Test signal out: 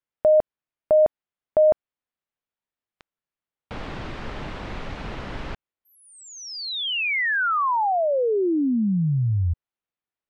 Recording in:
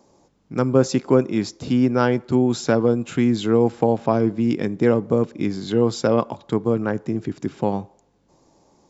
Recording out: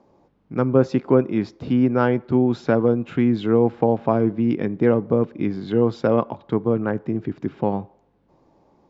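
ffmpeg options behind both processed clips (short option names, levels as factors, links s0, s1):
-af "lowpass=3400,aemphasis=mode=reproduction:type=50kf"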